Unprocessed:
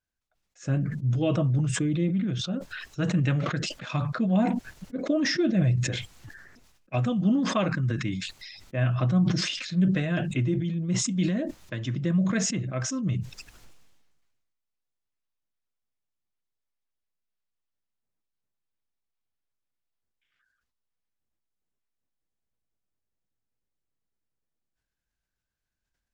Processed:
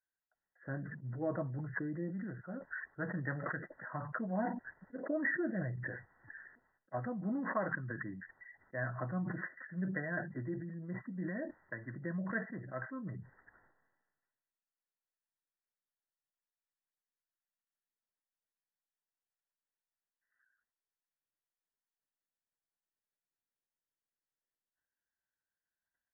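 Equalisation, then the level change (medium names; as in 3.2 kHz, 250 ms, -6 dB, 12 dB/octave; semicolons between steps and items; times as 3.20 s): brick-wall FIR low-pass 2 kHz; tilt EQ +4 dB/octave; band-stop 1.2 kHz, Q 7.9; -5.5 dB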